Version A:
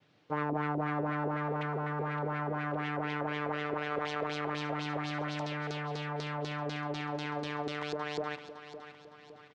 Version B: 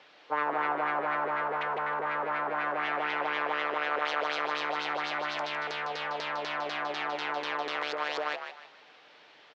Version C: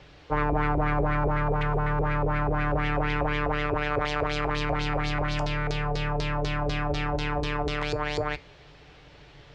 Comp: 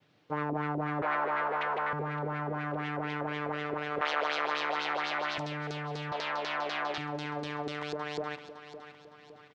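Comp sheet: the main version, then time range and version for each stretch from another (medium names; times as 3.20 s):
A
1.02–1.93 s: from B
4.01–5.38 s: from B
6.12–6.98 s: from B
not used: C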